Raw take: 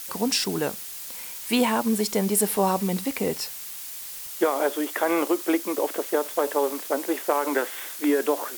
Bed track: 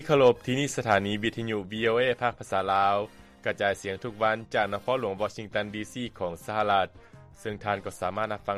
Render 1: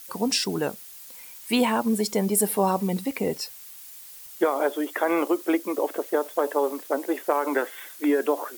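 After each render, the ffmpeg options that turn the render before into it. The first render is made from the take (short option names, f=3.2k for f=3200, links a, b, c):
-af "afftdn=nr=9:nf=-37"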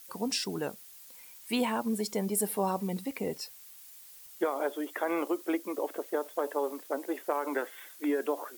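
-af "volume=-7.5dB"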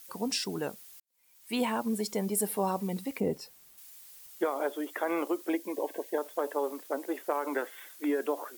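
-filter_complex "[0:a]asettb=1/sr,asplit=3[a][b][c];[a]atrim=end=3.204[d];[b]atrim=start=3.2:end=3.78,asetpts=PTS-STARTPTS,afade=t=in:d=0.004:c=qsin,afade=t=out:st=0.576:d=0.004:c=qsin,tiltshelf=f=890:g=6[e];[c]atrim=start=3.776[f];[d][e]acrossfade=d=0.004:c1=hsin:c2=qsin[g];[g][f]acrossfade=d=0.004:c1=qsin:c2=hsin,asettb=1/sr,asplit=3[h][i][j];[h]atrim=end=5.494[k];[i]atrim=start=5.49:end=6.18,asetpts=PTS-STARTPTS,afade=t=in:d=0.004:c=qsin,afade=t=out:st=0.686:d=0.004:c=qsin,asuperstop=centerf=1300:order=20:qfactor=3.4[l];[j]atrim=start=6.176[m];[k][l]acrossfade=d=0.004:c1=hsin:c2=qsin[n];[n][m]acrossfade=d=0.004:c1=qsin:c2=hsin,asplit=2[o][p];[o]atrim=end=1,asetpts=PTS-STARTPTS,afade=t=out:st=0.996:d=0.004:c=hsin[q];[p]atrim=start=1,asetpts=PTS-STARTPTS,afade=t=in:d=0.62:c=qua[r];[q][r]concat=n=2:v=0:a=1"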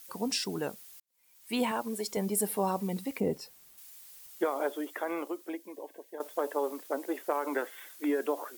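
-filter_complex "[0:a]asettb=1/sr,asplit=3[a][b][c];[a]atrim=end=1.714[d];[b]atrim=start=1.71:end=2.17,asetpts=PTS-STARTPTS,afade=t=in:d=0.004:c=qsin,afade=t=out:st=0.456:d=0.004:c=qsin,equalizer=f=180:t=o:w=0.77:g=-11[e];[c]atrim=start=2.166[f];[d][e]acrossfade=d=0.004:c1=hsin:c2=qsin[g];[g][f]acrossfade=d=0.004:c1=qsin:c2=hsin,asplit=2[h][i];[h]atrim=end=6.2,asetpts=PTS-STARTPTS,afade=t=out:st=4.72:d=1.48:c=qua:silence=0.251189[j];[i]atrim=start=6.2,asetpts=PTS-STARTPTS,afade=t=in:d=0.004:c=hsin:silence=0.251189[k];[j][k]concat=n=2:v=0:a=1"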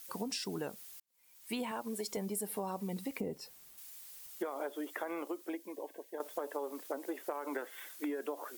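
-af "acompressor=threshold=-35dB:ratio=6"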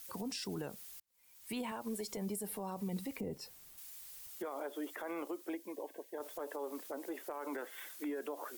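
-filter_complex "[0:a]acrossover=split=120[a][b];[a]acontrast=85[c];[b]alimiter=level_in=8.5dB:limit=-24dB:level=0:latency=1:release=34,volume=-8.5dB[d];[c][d]amix=inputs=2:normalize=0"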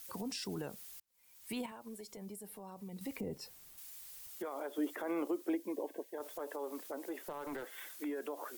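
-filter_complex "[0:a]asettb=1/sr,asplit=3[a][b][c];[a]atrim=end=4.784[d];[b]atrim=start=4.78:end=6.04,asetpts=PTS-STARTPTS,afade=t=in:d=0.004:c=qsin,afade=t=out:st=1.256:d=0.004:c=qsin,equalizer=f=260:t=o:w=2.1:g=7[e];[c]atrim=start=6.036[f];[d][e]acrossfade=d=0.004:c1=hsin:c2=qsin[g];[g][f]acrossfade=d=0.004:c1=qsin:c2=hsin,asettb=1/sr,asplit=3[h][i][j];[h]atrim=end=7.204[k];[i]atrim=start=7.2:end=7.68,asetpts=PTS-STARTPTS,afade=t=in:d=0.004:c=qsin,afade=t=out:st=0.476:d=0.004:c=qsin,aeval=exprs='clip(val(0),-1,0.00944)':c=same[l];[j]atrim=start=7.676[m];[k][l]acrossfade=d=0.004:c1=hsin:c2=qsin[n];[n][m]acrossfade=d=0.004:c1=qsin:c2=hsin,asplit=3[o][p][q];[o]atrim=end=1.662[r];[p]atrim=start=1.658:end=3.012,asetpts=PTS-STARTPTS,volume=-8dB[s];[q]atrim=start=3.008[t];[r][s]acrossfade=d=0.004:c1=hsin:c2=hsin[u];[u][t]acrossfade=d=0.004:c1=hsin:c2=hsin"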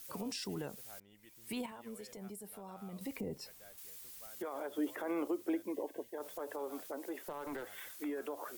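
-filter_complex "[1:a]volume=-34.5dB[a];[0:a][a]amix=inputs=2:normalize=0"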